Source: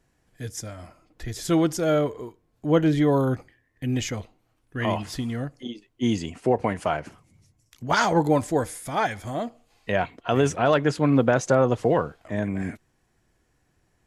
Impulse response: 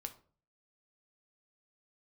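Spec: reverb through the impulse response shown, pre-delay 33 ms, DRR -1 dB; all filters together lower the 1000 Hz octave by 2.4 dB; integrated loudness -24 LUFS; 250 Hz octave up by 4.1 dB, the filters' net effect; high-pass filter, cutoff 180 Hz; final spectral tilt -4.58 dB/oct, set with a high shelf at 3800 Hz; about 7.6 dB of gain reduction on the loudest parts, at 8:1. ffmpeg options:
-filter_complex "[0:a]highpass=180,equalizer=f=250:t=o:g=6.5,equalizer=f=1k:t=o:g=-4.5,highshelf=f=3.8k:g=7.5,acompressor=threshold=-21dB:ratio=8,asplit=2[a][b];[1:a]atrim=start_sample=2205,adelay=33[c];[b][c]afir=irnorm=-1:irlink=0,volume=4dB[d];[a][d]amix=inputs=2:normalize=0,volume=0.5dB"

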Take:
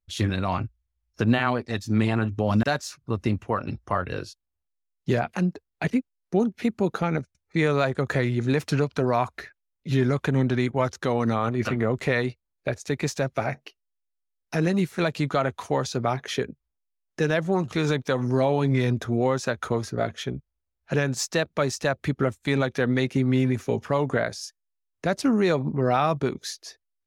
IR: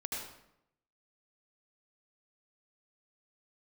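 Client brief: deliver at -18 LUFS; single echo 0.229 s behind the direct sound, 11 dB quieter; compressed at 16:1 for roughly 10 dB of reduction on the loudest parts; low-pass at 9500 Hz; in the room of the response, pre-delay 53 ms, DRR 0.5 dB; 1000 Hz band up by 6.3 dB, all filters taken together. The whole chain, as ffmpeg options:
-filter_complex "[0:a]lowpass=9.5k,equalizer=f=1k:t=o:g=8.5,acompressor=threshold=-23dB:ratio=16,aecho=1:1:229:0.282,asplit=2[a][b];[1:a]atrim=start_sample=2205,adelay=53[c];[b][c]afir=irnorm=-1:irlink=0,volume=-2.5dB[d];[a][d]amix=inputs=2:normalize=0,volume=9dB"

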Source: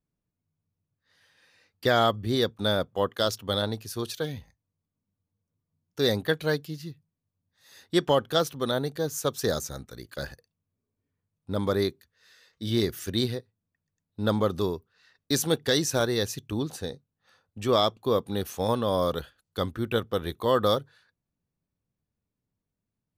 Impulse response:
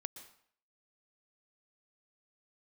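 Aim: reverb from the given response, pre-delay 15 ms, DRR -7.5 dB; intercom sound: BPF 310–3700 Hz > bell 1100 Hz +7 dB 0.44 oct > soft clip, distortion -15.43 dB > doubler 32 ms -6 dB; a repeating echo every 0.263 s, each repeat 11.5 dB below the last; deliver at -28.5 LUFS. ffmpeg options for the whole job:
-filter_complex "[0:a]aecho=1:1:263|526|789:0.266|0.0718|0.0194,asplit=2[a][b];[1:a]atrim=start_sample=2205,adelay=15[c];[b][c]afir=irnorm=-1:irlink=0,volume=10.5dB[d];[a][d]amix=inputs=2:normalize=0,highpass=310,lowpass=3.7k,equalizer=f=1.1k:t=o:w=0.44:g=7,asoftclip=threshold=-9dB,asplit=2[e][f];[f]adelay=32,volume=-6dB[g];[e][g]amix=inputs=2:normalize=0,volume=-8dB"

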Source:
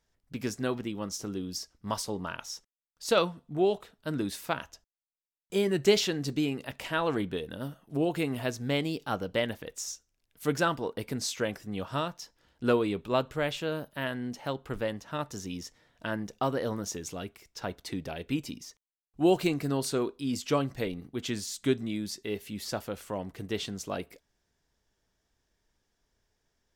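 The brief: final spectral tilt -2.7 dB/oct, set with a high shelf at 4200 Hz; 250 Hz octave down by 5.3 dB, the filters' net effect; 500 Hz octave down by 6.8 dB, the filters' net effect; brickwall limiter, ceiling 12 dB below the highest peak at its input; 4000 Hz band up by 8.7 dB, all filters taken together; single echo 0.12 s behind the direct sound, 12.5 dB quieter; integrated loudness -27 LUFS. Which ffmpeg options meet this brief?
-af "equalizer=f=250:t=o:g=-4.5,equalizer=f=500:t=o:g=-7.5,equalizer=f=4k:t=o:g=8.5,highshelf=f=4.2k:g=5,alimiter=limit=-18dB:level=0:latency=1,aecho=1:1:120:0.237,volume=6dB"

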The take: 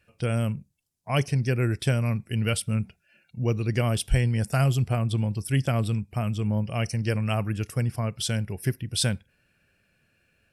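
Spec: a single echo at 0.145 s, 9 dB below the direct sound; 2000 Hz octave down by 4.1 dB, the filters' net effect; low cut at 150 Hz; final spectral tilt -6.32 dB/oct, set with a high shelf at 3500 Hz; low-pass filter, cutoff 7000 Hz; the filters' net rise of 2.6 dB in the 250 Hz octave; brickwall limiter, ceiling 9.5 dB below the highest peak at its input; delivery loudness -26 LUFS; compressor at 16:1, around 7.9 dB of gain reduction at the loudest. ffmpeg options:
-af "highpass=150,lowpass=7k,equalizer=f=250:t=o:g=4.5,equalizer=f=2k:t=o:g=-4,highshelf=f=3.5k:g=-4.5,acompressor=threshold=-27dB:ratio=16,alimiter=level_in=1.5dB:limit=-24dB:level=0:latency=1,volume=-1.5dB,aecho=1:1:145:0.355,volume=9.5dB"

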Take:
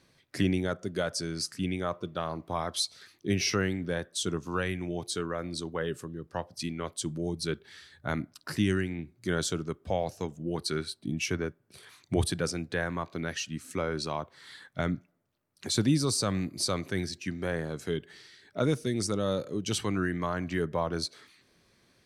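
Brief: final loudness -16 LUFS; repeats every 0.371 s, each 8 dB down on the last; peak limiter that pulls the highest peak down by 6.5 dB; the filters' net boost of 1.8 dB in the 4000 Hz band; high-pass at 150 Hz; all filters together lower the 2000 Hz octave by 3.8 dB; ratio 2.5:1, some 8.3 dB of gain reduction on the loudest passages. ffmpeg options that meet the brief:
-af "highpass=150,equalizer=f=2k:t=o:g=-6,equalizer=f=4k:t=o:g=3.5,acompressor=threshold=-35dB:ratio=2.5,alimiter=level_in=3.5dB:limit=-24dB:level=0:latency=1,volume=-3.5dB,aecho=1:1:371|742|1113|1484|1855:0.398|0.159|0.0637|0.0255|0.0102,volume=23dB"

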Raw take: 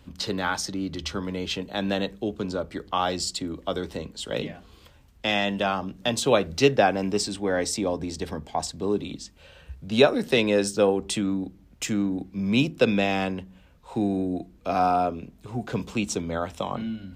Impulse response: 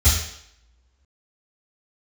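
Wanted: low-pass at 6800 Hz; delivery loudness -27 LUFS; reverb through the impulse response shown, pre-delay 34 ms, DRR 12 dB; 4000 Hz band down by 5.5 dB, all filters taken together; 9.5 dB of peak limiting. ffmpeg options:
-filter_complex "[0:a]lowpass=6.8k,equalizer=f=4k:t=o:g=-6.5,alimiter=limit=-15dB:level=0:latency=1,asplit=2[a][b];[1:a]atrim=start_sample=2205,adelay=34[c];[b][c]afir=irnorm=-1:irlink=0,volume=-28dB[d];[a][d]amix=inputs=2:normalize=0"

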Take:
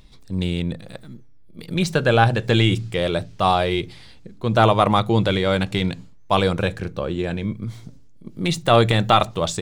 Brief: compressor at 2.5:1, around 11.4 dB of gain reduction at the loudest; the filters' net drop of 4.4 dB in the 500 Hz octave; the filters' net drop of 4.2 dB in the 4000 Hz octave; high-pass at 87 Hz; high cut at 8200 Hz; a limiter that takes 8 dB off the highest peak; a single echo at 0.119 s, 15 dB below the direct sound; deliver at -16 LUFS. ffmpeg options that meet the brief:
-af "highpass=87,lowpass=8.2k,equalizer=f=500:t=o:g=-5.5,equalizer=f=4k:t=o:g=-5,acompressor=threshold=-30dB:ratio=2.5,alimiter=limit=-21dB:level=0:latency=1,aecho=1:1:119:0.178,volume=18dB"

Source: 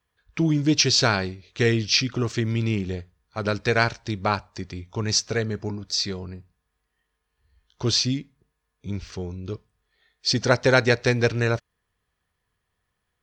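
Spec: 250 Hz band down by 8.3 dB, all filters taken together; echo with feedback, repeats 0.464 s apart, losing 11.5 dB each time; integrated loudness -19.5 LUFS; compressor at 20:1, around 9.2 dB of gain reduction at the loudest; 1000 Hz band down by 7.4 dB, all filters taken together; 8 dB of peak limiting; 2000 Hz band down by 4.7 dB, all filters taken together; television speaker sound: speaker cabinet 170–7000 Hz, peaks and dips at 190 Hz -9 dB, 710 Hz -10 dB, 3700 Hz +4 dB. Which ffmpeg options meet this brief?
-af "equalizer=f=250:t=o:g=-8,equalizer=f=1k:t=o:g=-5.5,equalizer=f=2k:t=o:g=-4,acompressor=threshold=-25dB:ratio=20,alimiter=limit=-23.5dB:level=0:latency=1,highpass=f=170:w=0.5412,highpass=f=170:w=1.3066,equalizer=f=190:t=q:w=4:g=-9,equalizer=f=710:t=q:w=4:g=-10,equalizer=f=3.7k:t=q:w=4:g=4,lowpass=f=7k:w=0.5412,lowpass=f=7k:w=1.3066,aecho=1:1:464|928|1392:0.266|0.0718|0.0194,volume=17dB"

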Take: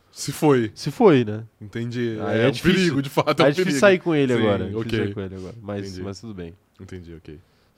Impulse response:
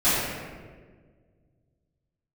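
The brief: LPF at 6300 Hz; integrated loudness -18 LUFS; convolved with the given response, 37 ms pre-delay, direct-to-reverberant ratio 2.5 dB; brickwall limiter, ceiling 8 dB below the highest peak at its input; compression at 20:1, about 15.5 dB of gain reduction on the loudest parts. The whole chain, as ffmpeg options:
-filter_complex "[0:a]lowpass=6.3k,acompressor=threshold=-24dB:ratio=20,alimiter=limit=-21.5dB:level=0:latency=1,asplit=2[a][b];[1:a]atrim=start_sample=2205,adelay=37[c];[b][c]afir=irnorm=-1:irlink=0,volume=-20dB[d];[a][d]amix=inputs=2:normalize=0,volume=11.5dB"

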